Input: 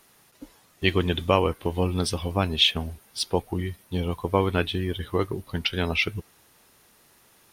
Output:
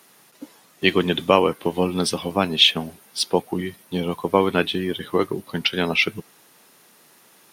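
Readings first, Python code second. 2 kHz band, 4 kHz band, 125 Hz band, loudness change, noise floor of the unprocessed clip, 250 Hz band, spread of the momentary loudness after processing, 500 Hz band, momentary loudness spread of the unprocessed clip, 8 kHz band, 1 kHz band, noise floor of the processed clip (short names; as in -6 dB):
+5.0 dB, +5.0 dB, -2.5 dB, +4.5 dB, -59 dBFS, +4.5 dB, 12 LU, +5.0 dB, 10 LU, +5.0 dB, +5.0 dB, -54 dBFS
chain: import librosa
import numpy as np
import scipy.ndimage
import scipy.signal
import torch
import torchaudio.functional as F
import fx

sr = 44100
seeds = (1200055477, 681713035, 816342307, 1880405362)

y = scipy.signal.sosfilt(scipy.signal.butter(4, 150.0, 'highpass', fs=sr, output='sos'), x)
y = F.gain(torch.from_numpy(y), 5.0).numpy()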